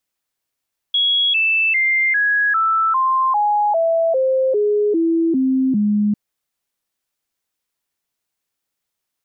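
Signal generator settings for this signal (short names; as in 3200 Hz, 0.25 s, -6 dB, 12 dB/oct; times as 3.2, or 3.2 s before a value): stepped sine 3330 Hz down, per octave 3, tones 13, 0.40 s, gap 0.00 s -13.5 dBFS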